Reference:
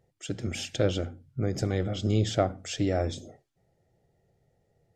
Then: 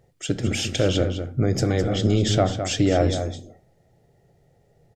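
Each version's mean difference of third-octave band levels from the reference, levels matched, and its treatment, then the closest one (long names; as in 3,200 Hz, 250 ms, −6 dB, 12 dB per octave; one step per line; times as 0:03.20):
4.5 dB: brickwall limiter −17.5 dBFS, peak gain reduction 5.5 dB
slap from a distant wall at 36 metres, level −8 dB
rectangular room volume 170 cubic metres, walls furnished, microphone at 0.31 metres
level +8.5 dB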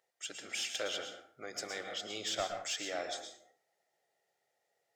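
12.5 dB: high-pass filter 980 Hz 12 dB per octave
soft clipping −26.5 dBFS, distortion −16 dB
dense smooth reverb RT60 0.51 s, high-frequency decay 0.7×, pre-delay 100 ms, DRR 6 dB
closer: first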